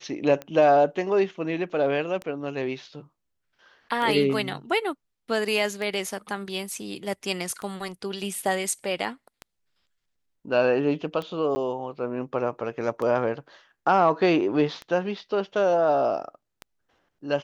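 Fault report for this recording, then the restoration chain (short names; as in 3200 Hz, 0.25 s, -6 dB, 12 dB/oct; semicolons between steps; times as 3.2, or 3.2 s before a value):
tick 33 1/3 rpm -20 dBFS
11.55–11.56 gap 10 ms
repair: de-click; interpolate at 11.55, 10 ms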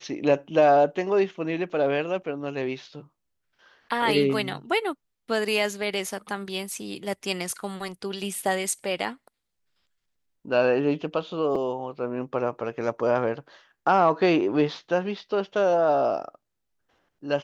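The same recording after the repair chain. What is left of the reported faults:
none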